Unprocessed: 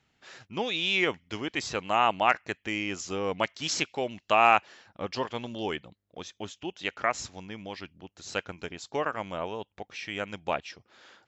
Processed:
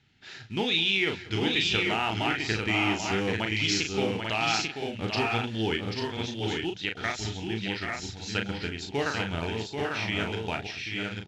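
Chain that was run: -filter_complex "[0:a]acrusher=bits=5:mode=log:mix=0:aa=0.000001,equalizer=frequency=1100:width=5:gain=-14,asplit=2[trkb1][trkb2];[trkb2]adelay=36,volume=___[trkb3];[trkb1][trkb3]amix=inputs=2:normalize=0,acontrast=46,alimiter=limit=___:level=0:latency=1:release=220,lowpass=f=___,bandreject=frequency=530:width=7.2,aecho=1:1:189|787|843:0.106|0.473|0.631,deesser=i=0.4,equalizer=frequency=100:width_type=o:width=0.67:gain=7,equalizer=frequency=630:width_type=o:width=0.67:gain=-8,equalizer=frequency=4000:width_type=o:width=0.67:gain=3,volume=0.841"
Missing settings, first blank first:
0.531, 0.224, 5300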